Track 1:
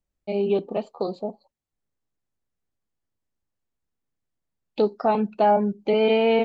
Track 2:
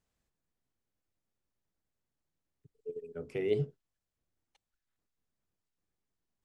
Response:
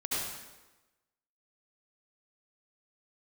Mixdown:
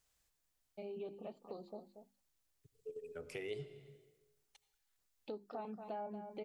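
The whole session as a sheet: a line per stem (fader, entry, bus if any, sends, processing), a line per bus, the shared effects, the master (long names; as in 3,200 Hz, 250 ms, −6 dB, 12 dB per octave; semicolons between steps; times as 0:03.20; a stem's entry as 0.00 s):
−16.5 dB, 0.50 s, no send, echo send −12 dB, low-pass filter 2,100 Hz 6 dB per octave; mains-hum notches 50/100/150/200/250/300/350 Hz
+1.0 dB, 0.00 s, send −19 dB, no echo send, parametric band 200 Hz −10 dB 2.1 octaves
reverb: on, RT60 1.1 s, pre-delay 63 ms
echo: single-tap delay 232 ms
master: high-shelf EQ 3,300 Hz +9 dB; downward compressor 2.5 to 1, threshold −45 dBFS, peak gain reduction 12 dB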